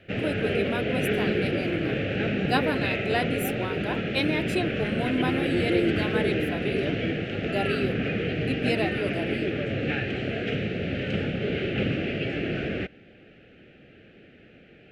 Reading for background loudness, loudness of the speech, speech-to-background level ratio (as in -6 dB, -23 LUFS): -27.5 LUFS, -31.5 LUFS, -4.0 dB